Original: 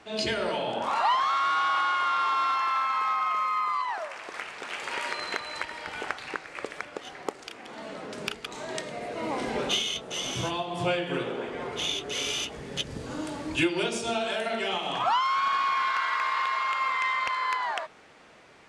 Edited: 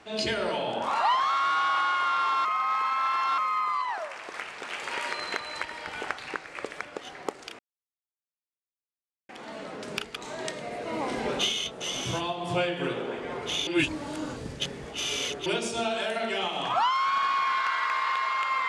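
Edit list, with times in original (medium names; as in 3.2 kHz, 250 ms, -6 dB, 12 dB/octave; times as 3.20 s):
2.45–3.38 s: reverse
7.59 s: insert silence 1.70 s
11.97–13.76 s: reverse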